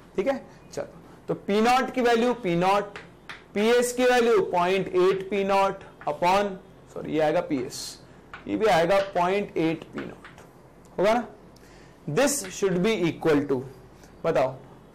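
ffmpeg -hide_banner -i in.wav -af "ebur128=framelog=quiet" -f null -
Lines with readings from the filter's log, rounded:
Integrated loudness:
  I:         -24.3 LUFS
  Threshold: -35.5 LUFS
Loudness range:
  LRA:         4.4 LU
  Threshold: -45.3 LUFS
  LRA low:   -27.6 LUFS
  LRA high:  -23.2 LUFS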